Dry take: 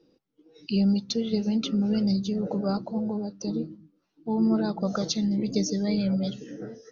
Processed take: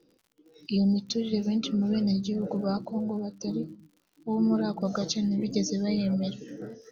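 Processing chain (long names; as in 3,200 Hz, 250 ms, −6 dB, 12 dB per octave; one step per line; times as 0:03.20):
surface crackle 75 per second −48 dBFS
time-frequency box erased 0:00.77–0:00.98, 920–3,000 Hz
level −1.5 dB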